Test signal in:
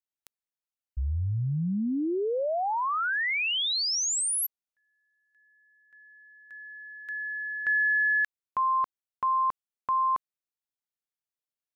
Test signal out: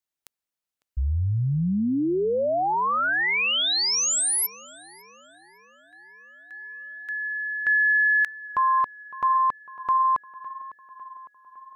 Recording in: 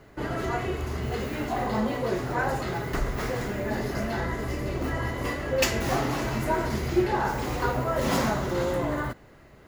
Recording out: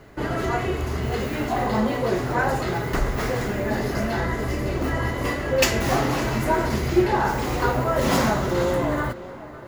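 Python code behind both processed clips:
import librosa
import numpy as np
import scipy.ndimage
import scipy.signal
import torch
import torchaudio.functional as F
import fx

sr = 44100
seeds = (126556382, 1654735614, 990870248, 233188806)

y = fx.echo_tape(x, sr, ms=555, feedback_pct=66, wet_db=-17.0, lp_hz=2700.0, drive_db=5.0, wow_cents=33)
y = F.gain(torch.from_numpy(y), 4.5).numpy()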